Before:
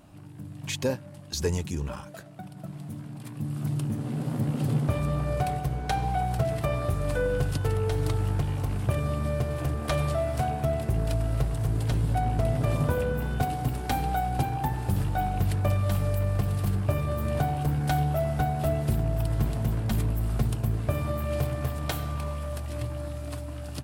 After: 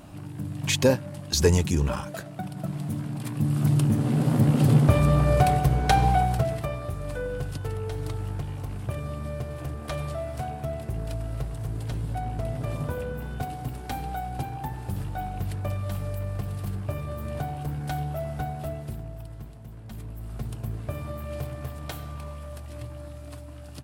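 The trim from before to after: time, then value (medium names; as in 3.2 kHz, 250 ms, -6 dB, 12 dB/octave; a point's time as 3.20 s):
6.08 s +7.5 dB
6.79 s -5 dB
18.50 s -5 dB
19.61 s -17 dB
20.63 s -5.5 dB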